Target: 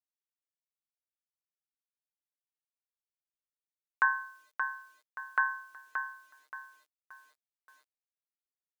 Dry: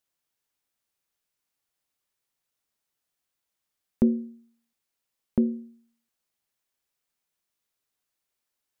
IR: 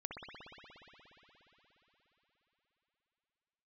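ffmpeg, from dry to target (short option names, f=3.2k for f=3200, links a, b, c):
-filter_complex "[0:a]aeval=exprs='val(0)*sin(2*PI*1300*n/s)':c=same,asplit=2[a][b];[b]aecho=0:1:576|1152|1728|2304:0.447|0.156|0.0547|0.0192[c];[a][c]amix=inputs=2:normalize=0,aresample=32000,aresample=44100,equalizer=f=910:t=o:w=0.95:g=-5,acrusher=bits=10:mix=0:aa=0.000001,highpass=f=290:w=0.5412,highpass=f=290:w=1.3066"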